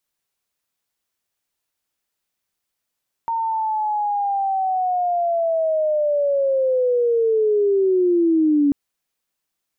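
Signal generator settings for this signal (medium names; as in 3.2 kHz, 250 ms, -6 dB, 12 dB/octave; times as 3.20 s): sweep linear 920 Hz -> 280 Hz -19.5 dBFS -> -13 dBFS 5.44 s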